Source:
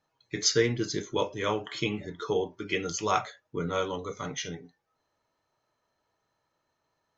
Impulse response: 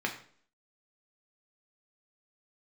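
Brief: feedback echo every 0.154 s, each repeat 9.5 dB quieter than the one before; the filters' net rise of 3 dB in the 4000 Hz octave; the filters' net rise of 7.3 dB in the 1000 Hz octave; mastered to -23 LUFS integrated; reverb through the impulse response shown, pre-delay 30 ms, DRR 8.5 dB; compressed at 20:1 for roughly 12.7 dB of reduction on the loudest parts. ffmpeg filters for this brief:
-filter_complex "[0:a]equalizer=f=1k:t=o:g=9,equalizer=f=4k:t=o:g=3.5,acompressor=threshold=-28dB:ratio=20,aecho=1:1:154|308|462|616:0.335|0.111|0.0365|0.012,asplit=2[a][b];[1:a]atrim=start_sample=2205,adelay=30[c];[b][c]afir=irnorm=-1:irlink=0,volume=-15.5dB[d];[a][d]amix=inputs=2:normalize=0,volume=10dB"

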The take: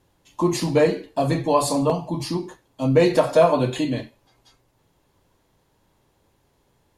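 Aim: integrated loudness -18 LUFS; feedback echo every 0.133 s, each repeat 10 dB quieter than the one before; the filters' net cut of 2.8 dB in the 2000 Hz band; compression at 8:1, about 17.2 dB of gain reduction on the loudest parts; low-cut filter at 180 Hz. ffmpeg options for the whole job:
-af "highpass=180,equalizer=f=2k:t=o:g=-3.5,acompressor=threshold=-30dB:ratio=8,aecho=1:1:133|266|399|532:0.316|0.101|0.0324|0.0104,volume=16.5dB"

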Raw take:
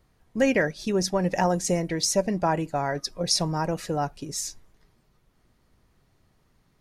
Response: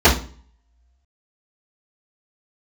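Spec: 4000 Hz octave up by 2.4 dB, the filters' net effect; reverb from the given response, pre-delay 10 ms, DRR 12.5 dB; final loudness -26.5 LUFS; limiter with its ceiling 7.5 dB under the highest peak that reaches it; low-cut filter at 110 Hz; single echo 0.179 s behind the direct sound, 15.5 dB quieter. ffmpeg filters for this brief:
-filter_complex "[0:a]highpass=110,equalizer=f=4k:t=o:g=3.5,alimiter=limit=-16.5dB:level=0:latency=1,aecho=1:1:179:0.168,asplit=2[a][b];[1:a]atrim=start_sample=2205,adelay=10[c];[b][c]afir=irnorm=-1:irlink=0,volume=-38dB[d];[a][d]amix=inputs=2:normalize=0,volume=1dB"

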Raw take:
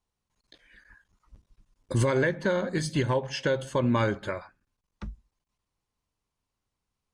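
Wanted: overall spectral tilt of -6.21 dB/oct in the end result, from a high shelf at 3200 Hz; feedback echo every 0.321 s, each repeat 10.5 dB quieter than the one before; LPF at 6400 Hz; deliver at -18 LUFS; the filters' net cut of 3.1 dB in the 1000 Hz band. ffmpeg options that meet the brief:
-af "lowpass=6.4k,equalizer=f=1k:t=o:g=-3,highshelf=f=3.2k:g=-5,aecho=1:1:321|642|963:0.299|0.0896|0.0269,volume=10dB"

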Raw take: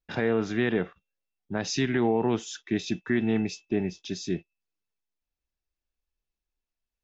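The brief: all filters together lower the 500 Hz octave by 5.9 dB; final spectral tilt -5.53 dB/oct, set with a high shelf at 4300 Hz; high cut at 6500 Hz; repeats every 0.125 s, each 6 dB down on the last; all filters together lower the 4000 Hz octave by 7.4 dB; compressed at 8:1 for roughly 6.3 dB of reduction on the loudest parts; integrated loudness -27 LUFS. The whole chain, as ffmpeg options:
-af "lowpass=6.5k,equalizer=f=500:t=o:g=-8,equalizer=f=4k:t=o:g=-5,highshelf=f=4.3k:g=-6,acompressor=threshold=-29dB:ratio=8,aecho=1:1:125|250|375|500|625|750:0.501|0.251|0.125|0.0626|0.0313|0.0157,volume=8.5dB"

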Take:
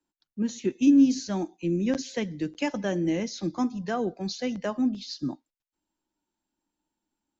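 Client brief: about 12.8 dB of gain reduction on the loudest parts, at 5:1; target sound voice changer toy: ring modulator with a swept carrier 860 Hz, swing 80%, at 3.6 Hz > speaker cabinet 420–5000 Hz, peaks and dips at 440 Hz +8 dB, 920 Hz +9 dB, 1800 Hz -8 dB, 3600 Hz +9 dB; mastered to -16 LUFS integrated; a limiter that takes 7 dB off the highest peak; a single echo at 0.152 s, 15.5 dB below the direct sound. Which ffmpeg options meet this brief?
-af "acompressor=threshold=-29dB:ratio=5,alimiter=level_in=2dB:limit=-24dB:level=0:latency=1,volume=-2dB,aecho=1:1:152:0.168,aeval=exprs='val(0)*sin(2*PI*860*n/s+860*0.8/3.6*sin(2*PI*3.6*n/s))':c=same,highpass=420,equalizer=f=440:t=q:w=4:g=8,equalizer=f=920:t=q:w=4:g=9,equalizer=f=1.8k:t=q:w=4:g=-8,equalizer=f=3.6k:t=q:w=4:g=9,lowpass=f=5k:w=0.5412,lowpass=f=5k:w=1.3066,volume=20dB"

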